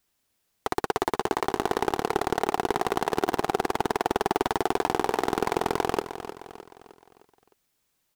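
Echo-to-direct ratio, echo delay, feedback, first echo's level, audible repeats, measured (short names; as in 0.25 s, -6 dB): -10.0 dB, 0.307 s, 47%, -11.0 dB, 4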